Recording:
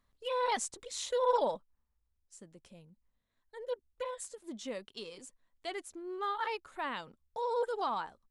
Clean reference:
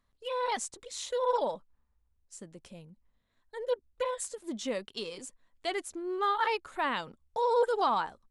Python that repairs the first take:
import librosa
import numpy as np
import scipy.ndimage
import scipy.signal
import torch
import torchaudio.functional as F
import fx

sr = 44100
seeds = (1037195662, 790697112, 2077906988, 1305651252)

y = fx.fix_level(x, sr, at_s=1.57, step_db=6.5)